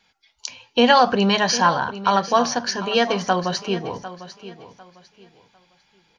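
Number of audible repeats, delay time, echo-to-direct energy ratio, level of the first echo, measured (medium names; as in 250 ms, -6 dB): 2, 750 ms, -14.0 dB, -14.5 dB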